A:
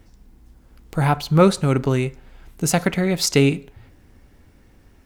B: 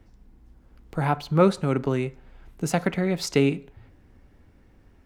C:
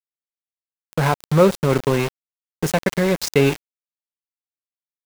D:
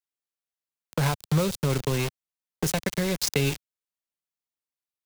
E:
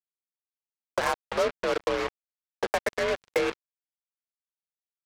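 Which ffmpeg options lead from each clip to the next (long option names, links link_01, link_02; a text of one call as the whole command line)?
ffmpeg -i in.wav -filter_complex "[0:a]highshelf=frequency=3900:gain=-10,acrossover=split=140[link_01][link_02];[link_01]acompressor=threshold=-35dB:ratio=6[link_03];[link_03][link_02]amix=inputs=2:normalize=0,volume=-3.5dB" out.wav
ffmpeg -i in.wav -filter_complex "[0:a]aecho=1:1:1.9:0.36,asplit=2[link_01][link_02];[link_02]alimiter=limit=-13.5dB:level=0:latency=1:release=100,volume=1dB[link_03];[link_01][link_03]amix=inputs=2:normalize=0,aeval=exprs='val(0)*gte(abs(val(0)),0.0891)':channel_layout=same" out.wav
ffmpeg -i in.wav -filter_complex "[0:a]acrossover=split=130|3000[link_01][link_02][link_03];[link_02]acompressor=threshold=-26dB:ratio=6[link_04];[link_01][link_04][link_03]amix=inputs=3:normalize=0" out.wav
ffmpeg -i in.wav -af "highpass=frequency=340:width_type=q:width=0.5412,highpass=frequency=340:width_type=q:width=1.307,lowpass=frequency=2100:width_type=q:width=0.5176,lowpass=frequency=2100:width_type=q:width=0.7071,lowpass=frequency=2100:width_type=q:width=1.932,afreqshift=51,aeval=exprs='val(0)+0.00251*(sin(2*PI*50*n/s)+sin(2*PI*2*50*n/s)/2+sin(2*PI*3*50*n/s)/3+sin(2*PI*4*50*n/s)/4+sin(2*PI*5*50*n/s)/5)':channel_layout=same,acrusher=bits=4:mix=0:aa=0.5,volume=3.5dB" out.wav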